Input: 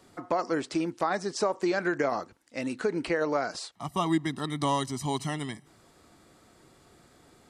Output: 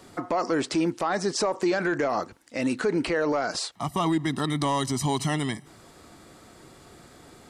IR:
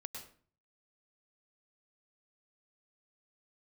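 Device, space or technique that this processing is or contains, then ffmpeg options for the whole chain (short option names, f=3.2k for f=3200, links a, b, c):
soft clipper into limiter: -af "asoftclip=type=tanh:threshold=-16.5dB,alimiter=level_in=1dB:limit=-24dB:level=0:latency=1:release=33,volume=-1dB,volume=8dB"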